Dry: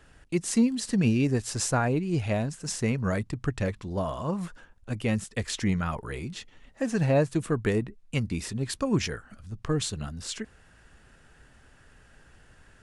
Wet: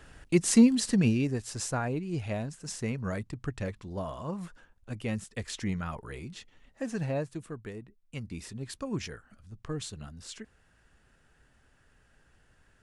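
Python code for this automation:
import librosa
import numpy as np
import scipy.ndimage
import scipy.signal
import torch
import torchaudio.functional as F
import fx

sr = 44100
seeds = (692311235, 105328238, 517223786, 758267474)

y = fx.gain(x, sr, db=fx.line((0.76, 3.5), (1.35, -6.0), (6.9, -6.0), (7.77, -16.5), (8.38, -8.5)))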